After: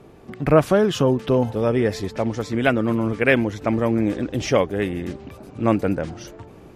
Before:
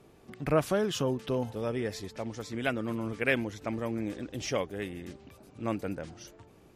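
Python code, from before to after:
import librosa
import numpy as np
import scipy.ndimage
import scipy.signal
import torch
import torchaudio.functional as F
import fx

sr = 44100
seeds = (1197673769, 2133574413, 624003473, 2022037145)

p1 = fx.high_shelf(x, sr, hz=2800.0, db=-8.5)
p2 = fx.rider(p1, sr, range_db=3, speed_s=0.5)
p3 = p1 + F.gain(torch.from_numpy(p2), -1.0).numpy()
y = F.gain(torch.from_numpy(p3), 7.0).numpy()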